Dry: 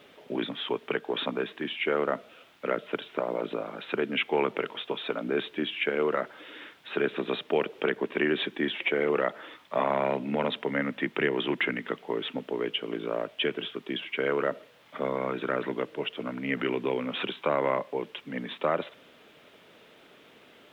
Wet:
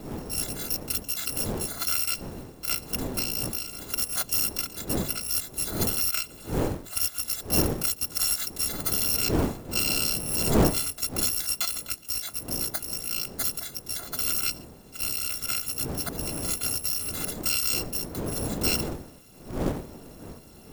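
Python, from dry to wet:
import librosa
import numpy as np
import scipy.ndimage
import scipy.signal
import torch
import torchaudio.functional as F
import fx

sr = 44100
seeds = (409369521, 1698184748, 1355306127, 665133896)

y = fx.bit_reversed(x, sr, seeds[0], block=256)
y = fx.dmg_wind(y, sr, seeds[1], corner_hz=370.0, level_db=-34.0)
y = fx.quant_float(y, sr, bits=2)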